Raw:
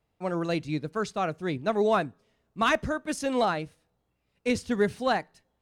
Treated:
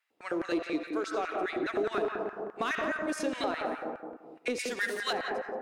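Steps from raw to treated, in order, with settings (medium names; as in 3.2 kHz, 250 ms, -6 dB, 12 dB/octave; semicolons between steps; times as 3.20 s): on a send at -5.5 dB: reverberation RT60 1.5 s, pre-delay 40 ms; on the sum: LFO high-pass square 4.8 Hz 340–1700 Hz; 0.62–1.39 s: peaking EQ 130 Hz -12.5 dB 1.7 oct; in parallel at -6.5 dB: hard clipper -24 dBFS, distortion -7 dB; on the sum: compression 3:1, threshold -27 dBFS, peak gain reduction 10.5 dB; 4.59–5.13 s: tilt EQ +3.5 dB/octave; filtered feedback delay 175 ms, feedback 20%, low-pass 1.7 kHz, level -4.5 dB; trim -4 dB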